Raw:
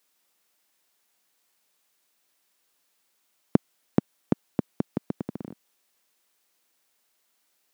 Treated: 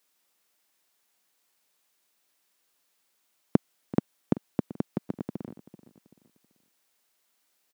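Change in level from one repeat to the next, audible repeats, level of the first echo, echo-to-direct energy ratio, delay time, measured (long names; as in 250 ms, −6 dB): −8.5 dB, 3, −17.0 dB, −16.5 dB, 385 ms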